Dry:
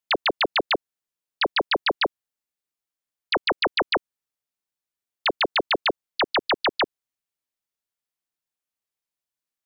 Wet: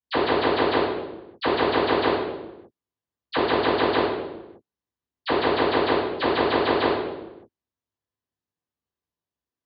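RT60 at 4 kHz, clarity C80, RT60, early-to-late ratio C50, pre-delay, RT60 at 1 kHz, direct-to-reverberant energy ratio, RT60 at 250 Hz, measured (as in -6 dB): 0.80 s, 2.5 dB, 1.1 s, -1.0 dB, 3 ms, 0.95 s, -20.5 dB, 1.4 s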